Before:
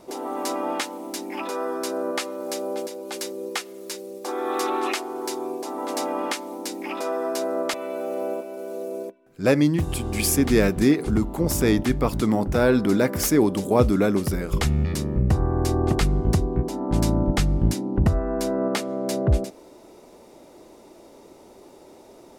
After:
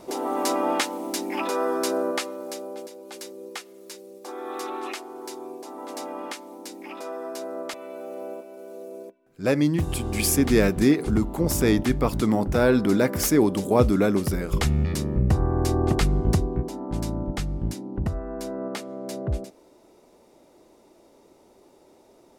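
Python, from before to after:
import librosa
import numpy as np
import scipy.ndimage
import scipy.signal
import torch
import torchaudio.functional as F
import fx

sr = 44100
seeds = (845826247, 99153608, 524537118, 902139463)

y = fx.gain(x, sr, db=fx.line((1.93, 3.0), (2.71, -7.5), (9.03, -7.5), (9.84, -0.5), (16.34, -0.5), (17.02, -7.5)))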